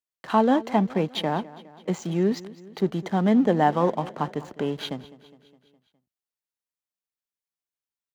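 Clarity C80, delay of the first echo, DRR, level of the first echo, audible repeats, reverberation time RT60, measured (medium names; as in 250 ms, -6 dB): no reverb, 206 ms, no reverb, -19.0 dB, 4, no reverb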